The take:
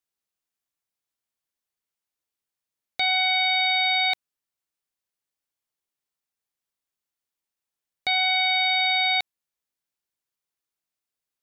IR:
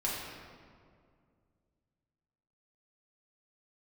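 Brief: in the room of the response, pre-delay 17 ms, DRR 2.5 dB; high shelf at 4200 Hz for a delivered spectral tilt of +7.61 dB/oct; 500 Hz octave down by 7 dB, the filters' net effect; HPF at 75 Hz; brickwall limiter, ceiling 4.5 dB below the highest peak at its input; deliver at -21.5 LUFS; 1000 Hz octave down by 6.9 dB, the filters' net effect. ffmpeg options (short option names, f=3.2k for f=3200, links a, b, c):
-filter_complex "[0:a]highpass=75,equalizer=f=500:t=o:g=-8.5,equalizer=f=1k:t=o:g=-6,highshelf=f=4.2k:g=7.5,alimiter=limit=-17dB:level=0:latency=1,asplit=2[a][b];[1:a]atrim=start_sample=2205,adelay=17[c];[b][c]afir=irnorm=-1:irlink=0,volume=-8.5dB[d];[a][d]amix=inputs=2:normalize=0,volume=1dB"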